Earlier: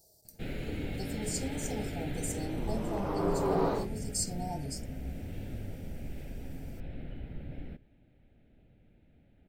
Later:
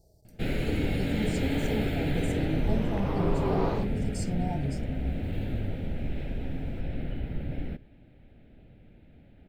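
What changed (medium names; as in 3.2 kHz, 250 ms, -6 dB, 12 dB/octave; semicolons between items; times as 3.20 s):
speech: add tilt EQ -3.5 dB/octave; first sound +8.5 dB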